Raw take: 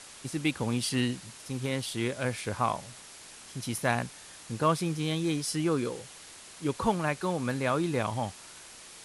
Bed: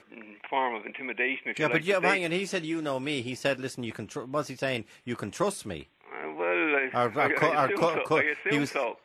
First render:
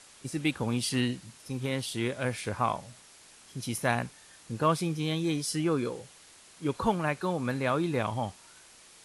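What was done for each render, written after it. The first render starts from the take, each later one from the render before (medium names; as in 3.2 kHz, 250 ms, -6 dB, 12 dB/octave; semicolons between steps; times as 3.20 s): noise print and reduce 6 dB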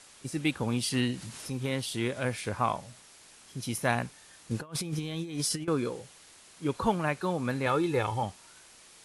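1.14–2.34 s: upward compressor, threshold -32 dBFS; 4.51–5.68 s: compressor with a negative ratio -33 dBFS, ratio -0.5; 7.66–8.23 s: comb 2.3 ms, depth 64%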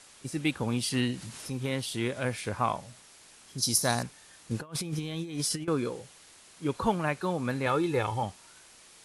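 3.58–4.03 s: resonant high shelf 3.6 kHz +10 dB, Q 3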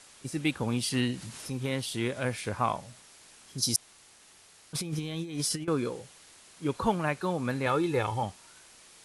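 3.76–4.73 s: room tone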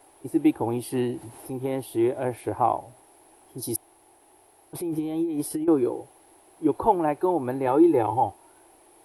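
FFT filter 110 Hz 0 dB, 210 Hz -9 dB, 330 Hz +14 dB, 510 Hz +3 dB, 820 Hz +12 dB, 1.2 kHz -5 dB, 2.4 kHz -8 dB, 7 kHz -18 dB, 13 kHz +11 dB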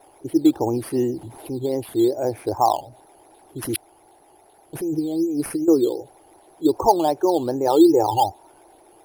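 resonances exaggerated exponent 1.5; in parallel at -3.5 dB: decimation with a swept rate 9×, swing 60% 2.6 Hz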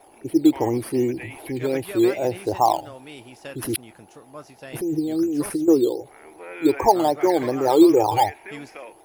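add bed -10.5 dB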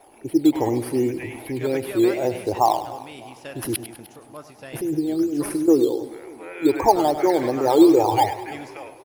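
feedback delay 100 ms, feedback 43%, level -12.5 dB; modulated delay 300 ms, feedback 49%, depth 138 cents, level -20 dB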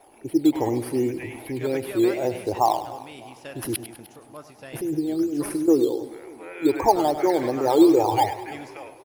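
trim -2 dB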